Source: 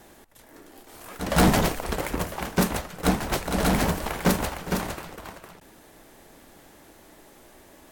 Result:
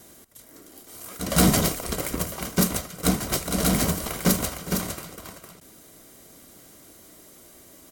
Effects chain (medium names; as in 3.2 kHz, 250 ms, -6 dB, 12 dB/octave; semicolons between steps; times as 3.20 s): tone controls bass +5 dB, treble +11 dB; comb of notches 860 Hz; delay 77 ms -22.5 dB; trim -2 dB